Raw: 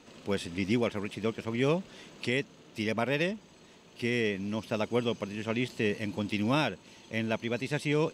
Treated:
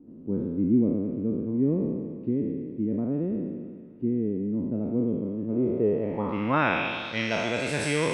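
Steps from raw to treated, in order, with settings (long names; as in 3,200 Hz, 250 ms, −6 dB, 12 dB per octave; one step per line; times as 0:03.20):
peak hold with a decay on every bin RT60 1.69 s
low-pass filter sweep 280 Hz → 8,900 Hz, 0:05.49–0:07.62
delay with a high-pass on its return 218 ms, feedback 74%, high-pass 1,500 Hz, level −12.5 dB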